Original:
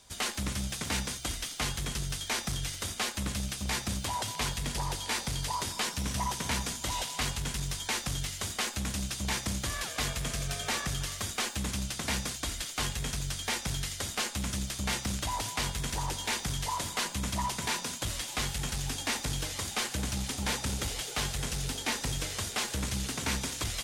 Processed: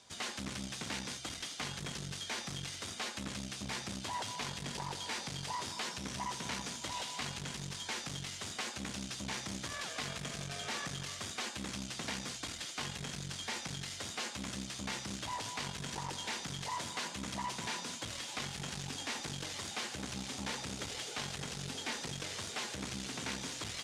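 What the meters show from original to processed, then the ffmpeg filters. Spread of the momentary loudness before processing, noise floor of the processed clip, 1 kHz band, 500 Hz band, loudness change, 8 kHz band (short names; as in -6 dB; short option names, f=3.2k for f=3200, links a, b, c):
2 LU, -46 dBFS, -5.5 dB, -5.5 dB, -7.0 dB, -8.0 dB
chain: -af "alimiter=level_in=1.5dB:limit=-24dB:level=0:latency=1,volume=-1.5dB,aeval=exprs='clip(val(0),-1,0.01)':c=same,highpass=130,lowpass=7k,volume=-1dB"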